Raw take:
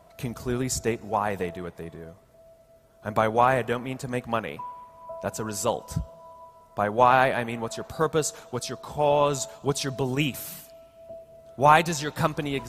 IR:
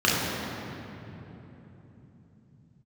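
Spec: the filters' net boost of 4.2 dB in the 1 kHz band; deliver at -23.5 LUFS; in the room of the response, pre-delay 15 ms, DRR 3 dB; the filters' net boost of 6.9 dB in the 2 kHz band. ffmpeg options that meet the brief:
-filter_complex "[0:a]equalizer=f=1000:t=o:g=3.5,equalizer=f=2000:t=o:g=8,asplit=2[s0][s1];[1:a]atrim=start_sample=2205,adelay=15[s2];[s1][s2]afir=irnorm=-1:irlink=0,volume=0.0841[s3];[s0][s3]amix=inputs=2:normalize=0,volume=0.75"

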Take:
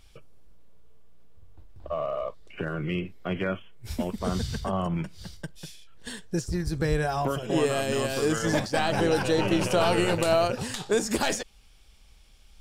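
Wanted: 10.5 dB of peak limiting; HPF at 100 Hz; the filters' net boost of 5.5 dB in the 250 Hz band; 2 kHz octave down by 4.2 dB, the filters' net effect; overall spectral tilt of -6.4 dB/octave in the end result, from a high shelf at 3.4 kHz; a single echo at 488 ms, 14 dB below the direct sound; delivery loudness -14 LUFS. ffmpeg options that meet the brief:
-af "highpass=100,equalizer=f=250:t=o:g=8.5,equalizer=f=2000:t=o:g=-3.5,highshelf=f=3400:g=-8,alimiter=limit=0.106:level=0:latency=1,aecho=1:1:488:0.2,volume=5.96"

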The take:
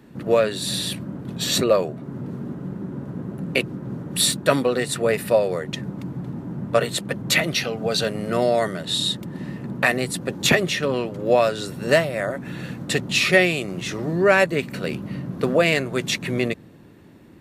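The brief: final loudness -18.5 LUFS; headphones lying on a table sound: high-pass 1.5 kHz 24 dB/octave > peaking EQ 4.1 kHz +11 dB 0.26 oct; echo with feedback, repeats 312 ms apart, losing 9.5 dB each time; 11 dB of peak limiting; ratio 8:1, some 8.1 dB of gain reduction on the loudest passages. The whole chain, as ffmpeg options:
-af "acompressor=threshold=0.1:ratio=8,alimiter=limit=0.141:level=0:latency=1,highpass=f=1500:w=0.5412,highpass=f=1500:w=1.3066,equalizer=f=4100:t=o:w=0.26:g=11,aecho=1:1:312|624|936|1248:0.335|0.111|0.0365|0.012,volume=2.82"

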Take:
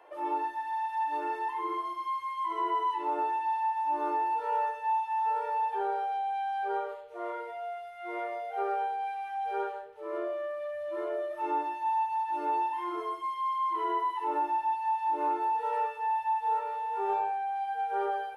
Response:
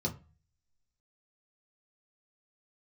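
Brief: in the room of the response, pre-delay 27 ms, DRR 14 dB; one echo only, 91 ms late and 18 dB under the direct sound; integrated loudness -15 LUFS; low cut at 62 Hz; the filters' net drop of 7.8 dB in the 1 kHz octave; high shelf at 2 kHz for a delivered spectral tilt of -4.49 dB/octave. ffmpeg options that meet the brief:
-filter_complex "[0:a]highpass=62,equalizer=f=1000:t=o:g=-7.5,highshelf=f=2000:g=-8.5,aecho=1:1:91:0.126,asplit=2[s0][s1];[1:a]atrim=start_sample=2205,adelay=27[s2];[s1][s2]afir=irnorm=-1:irlink=0,volume=0.133[s3];[s0][s3]amix=inputs=2:normalize=0,volume=14.1"

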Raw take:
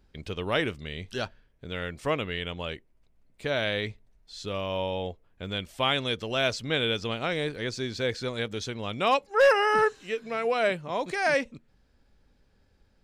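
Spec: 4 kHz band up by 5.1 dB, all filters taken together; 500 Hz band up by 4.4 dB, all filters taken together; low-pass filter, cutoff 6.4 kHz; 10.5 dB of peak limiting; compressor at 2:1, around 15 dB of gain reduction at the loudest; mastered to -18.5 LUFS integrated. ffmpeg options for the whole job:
-af "lowpass=6400,equalizer=f=500:t=o:g=5,equalizer=f=4000:t=o:g=7,acompressor=threshold=0.01:ratio=2,volume=12.6,alimiter=limit=0.376:level=0:latency=1"

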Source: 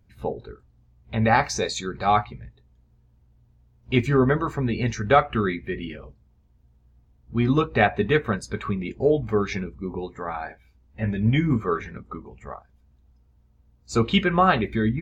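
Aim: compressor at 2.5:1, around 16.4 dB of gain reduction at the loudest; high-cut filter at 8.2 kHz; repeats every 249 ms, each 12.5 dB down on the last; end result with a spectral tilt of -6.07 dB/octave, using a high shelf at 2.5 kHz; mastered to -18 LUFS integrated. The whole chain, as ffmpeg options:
-af "lowpass=8200,highshelf=f=2500:g=-7,acompressor=threshold=0.01:ratio=2.5,aecho=1:1:249|498|747:0.237|0.0569|0.0137,volume=10.6"

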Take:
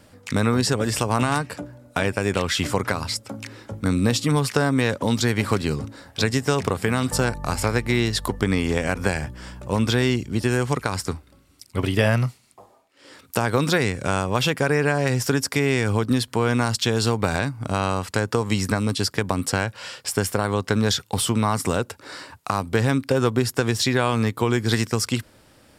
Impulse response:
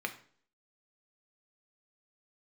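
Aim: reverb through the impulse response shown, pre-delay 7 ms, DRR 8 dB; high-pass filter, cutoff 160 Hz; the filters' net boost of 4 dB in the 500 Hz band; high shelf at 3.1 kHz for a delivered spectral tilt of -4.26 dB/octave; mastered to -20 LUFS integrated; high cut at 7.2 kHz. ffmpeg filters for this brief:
-filter_complex "[0:a]highpass=160,lowpass=7200,equalizer=f=500:t=o:g=5,highshelf=f=3100:g=-3,asplit=2[s0][s1];[1:a]atrim=start_sample=2205,adelay=7[s2];[s1][s2]afir=irnorm=-1:irlink=0,volume=0.251[s3];[s0][s3]amix=inputs=2:normalize=0,volume=1.26"

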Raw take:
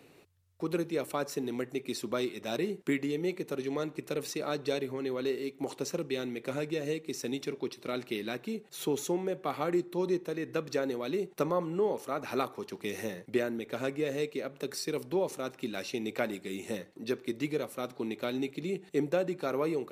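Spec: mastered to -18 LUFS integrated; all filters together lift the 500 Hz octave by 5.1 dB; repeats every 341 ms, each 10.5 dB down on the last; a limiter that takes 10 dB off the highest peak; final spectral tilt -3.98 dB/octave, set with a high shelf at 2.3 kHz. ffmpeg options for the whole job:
-af "equalizer=f=500:t=o:g=6,highshelf=f=2300:g=7.5,alimiter=limit=0.0794:level=0:latency=1,aecho=1:1:341|682|1023:0.299|0.0896|0.0269,volume=5.31"

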